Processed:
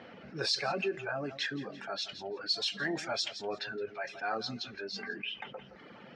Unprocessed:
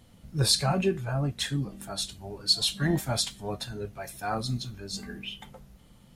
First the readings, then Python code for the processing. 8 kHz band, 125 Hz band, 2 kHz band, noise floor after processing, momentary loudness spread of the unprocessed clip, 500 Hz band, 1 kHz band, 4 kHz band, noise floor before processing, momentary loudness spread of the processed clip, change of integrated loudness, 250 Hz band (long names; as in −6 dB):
−13.0 dB, −18.5 dB, +2.5 dB, −53 dBFS, 14 LU, −3.0 dB, −3.5 dB, −5.5 dB, −56 dBFS, 10 LU, −6.0 dB, −9.0 dB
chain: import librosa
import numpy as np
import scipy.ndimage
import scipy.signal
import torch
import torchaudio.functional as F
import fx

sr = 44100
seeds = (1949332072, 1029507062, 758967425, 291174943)

y = fx.env_lowpass(x, sr, base_hz=2000.0, full_db=-20.5)
y = fx.dereverb_blind(y, sr, rt60_s=0.78)
y = fx.cabinet(y, sr, low_hz=390.0, low_slope=12, high_hz=5600.0, hz=(410.0, 1000.0, 1600.0, 2500.0, 3600.0, 5400.0), db=(3, -5, 6, 4, -4, 4))
y = fx.echo_feedback(y, sr, ms=168, feedback_pct=23, wet_db=-22)
y = fx.env_flatten(y, sr, amount_pct=50)
y = F.gain(torch.from_numpy(y), -8.0).numpy()